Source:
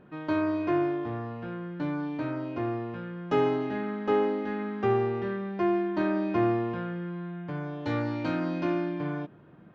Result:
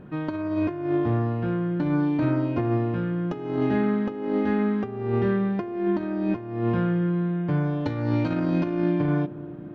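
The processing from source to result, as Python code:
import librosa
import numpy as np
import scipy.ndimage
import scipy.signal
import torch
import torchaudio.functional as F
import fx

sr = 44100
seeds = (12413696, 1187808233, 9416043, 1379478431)

p1 = fx.low_shelf(x, sr, hz=270.0, db=10.0)
p2 = fx.over_compress(p1, sr, threshold_db=-26.0, ratio=-0.5)
p3 = p2 + fx.echo_banded(p2, sr, ms=269, feedback_pct=73, hz=360.0, wet_db=-16.0, dry=0)
y = F.gain(torch.from_numpy(p3), 2.5).numpy()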